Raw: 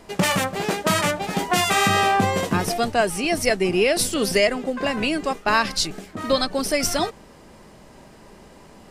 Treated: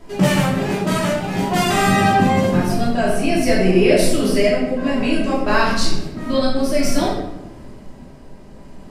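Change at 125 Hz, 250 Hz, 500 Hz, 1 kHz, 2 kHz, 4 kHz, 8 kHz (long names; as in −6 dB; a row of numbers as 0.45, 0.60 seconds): +8.0, +8.0, +4.0, +2.0, +0.5, −1.0, −2.0 decibels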